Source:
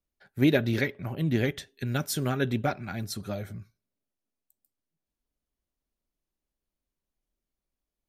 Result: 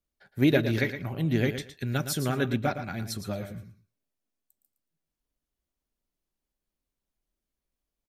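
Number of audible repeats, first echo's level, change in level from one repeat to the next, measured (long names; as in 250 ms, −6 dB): 2, −10.0 dB, −15.5 dB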